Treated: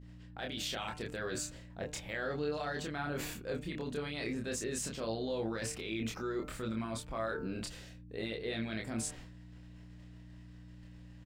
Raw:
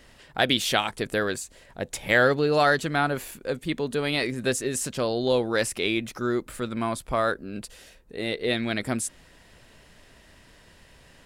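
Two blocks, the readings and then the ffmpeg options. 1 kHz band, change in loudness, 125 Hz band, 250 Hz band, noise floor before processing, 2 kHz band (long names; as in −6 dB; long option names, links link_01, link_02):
−15.0 dB, −12.5 dB, −9.0 dB, −10.0 dB, −55 dBFS, −15.0 dB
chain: -filter_complex "[0:a]bandreject=frequency=149.7:width_type=h:width=4,bandreject=frequency=299.4:width_type=h:width=4,bandreject=frequency=449.1:width_type=h:width=4,bandreject=frequency=598.8:width_type=h:width=4,bandreject=frequency=748.5:width_type=h:width=4,bandreject=frequency=898.2:width_type=h:width=4,bandreject=frequency=1047.9:width_type=h:width=4,bandreject=frequency=1197.6:width_type=h:width=4,bandreject=frequency=1347.3:width_type=h:width=4,bandreject=frequency=1497:width_type=h:width=4,bandreject=frequency=1646.7:width_type=h:width=4,bandreject=frequency=1796.4:width_type=h:width=4,bandreject=frequency=1946.1:width_type=h:width=4,bandreject=frequency=2095.8:width_type=h:width=4,bandreject=frequency=2245.5:width_type=h:width=4,bandreject=frequency=2395.2:width_type=h:width=4,bandreject=frequency=2544.9:width_type=h:width=4,bandreject=frequency=2694.6:width_type=h:width=4,bandreject=frequency=2844.3:width_type=h:width=4,agate=range=-33dB:threshold=-43dB:ratio=3:detection=peak,equalizer=frequency=11000:width_type=o:width=0.49:gain=-14.5,areverse,acompressor=threshold=-33dB:ratio=5,areverse,alimiter=level_in=6dB:limit=-24dB:level=0:latency=1:release=29,volume=-6dB,aeval=exprs='val(0)+0.00316*(sin(2*PI*60*n/s)+sin(2*PI*2*60*n/s)/2+sin(2*PI*3*60*n/s)/3+sin(2*PI*4*60*n/s)/4+sin(2*PI*5*60*n/s)/5)':channel_layout=same,asplit=2[link_01][link_02];[link_02]adelay=27,volume=-3dB[link_03];[link_01][link_03]amix=inputs=2:normalize=0"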